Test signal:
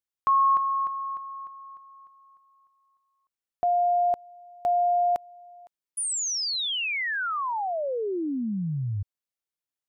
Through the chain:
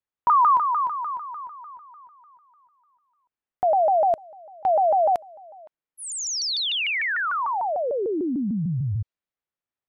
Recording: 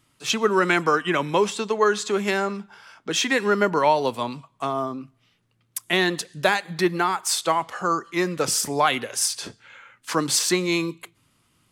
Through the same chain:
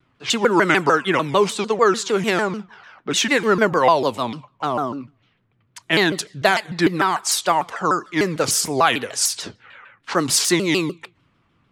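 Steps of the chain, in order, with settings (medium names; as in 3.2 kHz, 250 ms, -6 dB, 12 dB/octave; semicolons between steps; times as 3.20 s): level-controlled noise filter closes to 2.2 kHz, open at -20.5 dBFS; vibrato with a chosen wave saw down 6.7 Hz, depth 250 cents; trim +3.5 dB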